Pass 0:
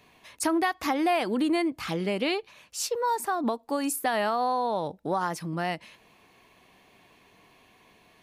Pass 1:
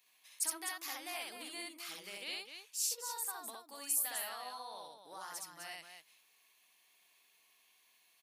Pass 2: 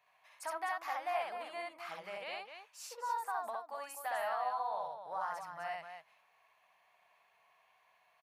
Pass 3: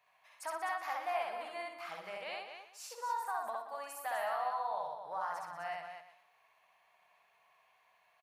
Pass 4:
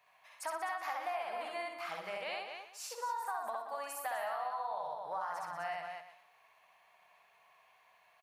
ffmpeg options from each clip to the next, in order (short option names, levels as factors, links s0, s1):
-af "aderivative,aecho=1:1:64.14|253.6:0.891|0.447,volume=0.596"
-af "firequalizer=gain_entry='entry(150,0);entry(270,-17);entry(630,6);entry(3500,-16);entry(8600,-24)':delay=0.05:min_phase=1,volume=2.24"
-af "aecho=1:1:121|242|363:0.299|0.0896|0.0269"
-af "acompressor=threshold=0.0126:ratio=6,volume=1.5"